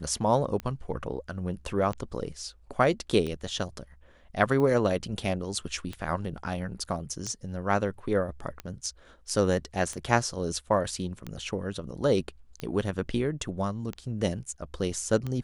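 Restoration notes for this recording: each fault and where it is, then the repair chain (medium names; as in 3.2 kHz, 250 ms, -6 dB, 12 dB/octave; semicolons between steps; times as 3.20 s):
tick 45 rpm -21 dBFS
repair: de-click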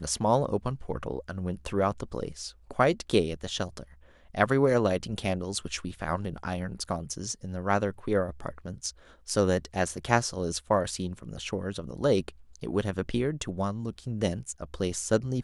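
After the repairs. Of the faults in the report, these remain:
nothing left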